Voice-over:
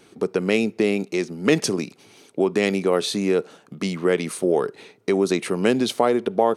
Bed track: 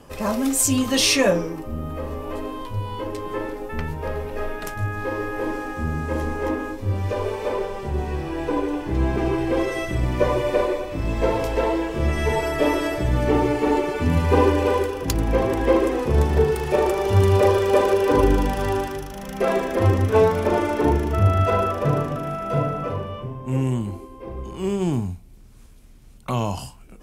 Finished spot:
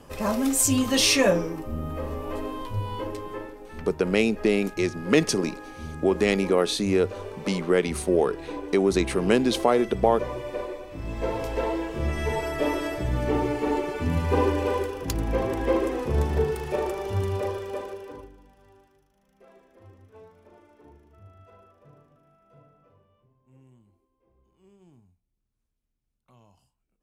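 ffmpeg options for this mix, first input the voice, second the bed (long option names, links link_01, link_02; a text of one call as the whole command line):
ffmpeg -i stem1.wav -i stem2.wav -filter_complex "[0:a]adelay=3650,volume=-1.5dB[link_01];[1:a]volume=4dB,afade=type=out:start_time=2.97:duration=0.56:silence=0.334965,afade=type=in:start_time=10.79:duration=0.8:silence=0.501187,afade=type=out:start_time=16.33:duration=1.98:silence=0.0398107[link_02];[link_01][link_02]amix=inputs=2:normalize=0" out.wav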